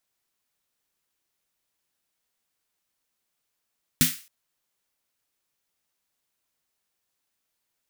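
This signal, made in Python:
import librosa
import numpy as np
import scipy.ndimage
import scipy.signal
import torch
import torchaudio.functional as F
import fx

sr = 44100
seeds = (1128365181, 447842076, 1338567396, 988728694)

y = fx.drum_snare(sr, seeds[0], length_s=0.27, hz=160.0, second_hz=250.0, noise_db=2.0, noise_from_hz=1600.0, decay_s=0.19, noise_decay_s=0.37)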